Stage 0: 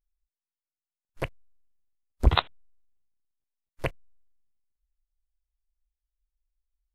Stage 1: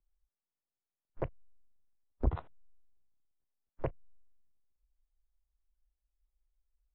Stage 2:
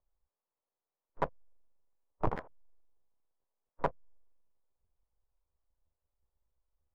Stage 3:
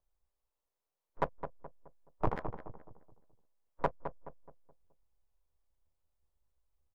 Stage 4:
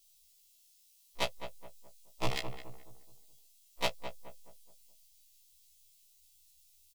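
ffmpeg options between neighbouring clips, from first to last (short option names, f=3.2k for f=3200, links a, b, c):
-filter_complex "[0:a]acrossover=split=120[a][b];[b]alimiter=limit=-13dB:level=0:latency=1:release=49[c];[a][c]amix=inputs=2:normalize=0,lowpass=1k,acompressor=threshold=-38dB:ratio=2,volume=2.5dB"
-af "adynamicsmooth=sensitivity=6.5:basefreq=1.4k,aeval=exprs='abs(val(0))':c=same,equalizer=f=500:t=o:w=1:g=11,equalizer=f=1k:t=o:w=1:g=12,equalizer=f=2k:t=o:w=1:g=4,volume=-2.5dB"
-filter_complex "[0:a]asplit=2[a][b];[b]adelay=212,lowpass=f=1.3k:p=1,volume=-8dB,asplit=2[c][d];[d]adelay=212,lowpass=f=1.3k:p=1,volume=0.4,asplit=2[e][f];[f]adelay=212,lowpass=f=1.3k:p=1,volume=0.4,asplit=2[g][h];[h]adelay=212,lowpass=f=1.3k:p=1,volume=0.4,asplit=2[i][j];[j]adelay=212,lowpass=f=1.3k:p=1,volume=0.4[k];[a][c][e][g][i][k]amix=inputs=6:normalize=0"
-filter_complex "[0:a]aexciter=amount=8.8:drive=10:freq=2.4k,asplit=2[a][b];[b]adelay=17,volume=-10dB[c];[a][c]amix=inputs=2:normalize=0,afftfilt=real='re*1.73*eq(mod(b,3),0)':imag='im*1.73*eq(mod(b,3),0)':win_size=2048:overlap=0.75"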